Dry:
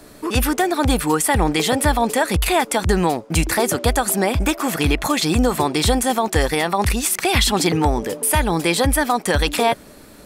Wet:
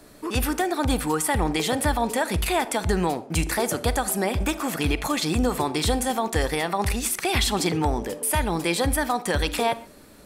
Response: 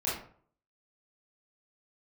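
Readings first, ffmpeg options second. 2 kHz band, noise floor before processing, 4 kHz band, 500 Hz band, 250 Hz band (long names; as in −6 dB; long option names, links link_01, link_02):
−6.0 dB, −43 dBFS, −6.0 dB, −5.5 dB, −5.5 dB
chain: -filter_complex "[0:a]asplit=2[link_01][link_02];[1:a]atrim=start_sample=2205,atrim=end_sample=3969,asetrate=26019,aresample=44100[link_03];[link_02][link_03]afir=irnorm=-1:irlink=0,volume=-23.5dB[link_04];[link_01][link_04]amix=inputs=2:normalize=0,volume=-6.5dB"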